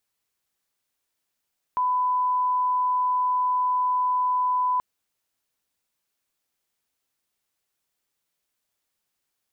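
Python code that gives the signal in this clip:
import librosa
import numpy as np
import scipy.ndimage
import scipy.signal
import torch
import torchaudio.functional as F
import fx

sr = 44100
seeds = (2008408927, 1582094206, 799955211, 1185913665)

y = fx.lineup_tone(sr, length_s=3.03, level_db=-20.0)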